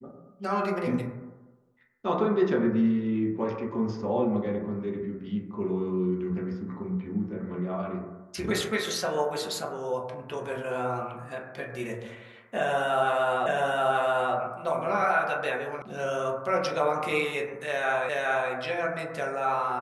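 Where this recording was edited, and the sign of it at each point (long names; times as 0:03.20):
0:13.46: the same again, the last 0.88 s
0:15.82: cut off before it has died away
0:18.09: the same again, the last 0.42 s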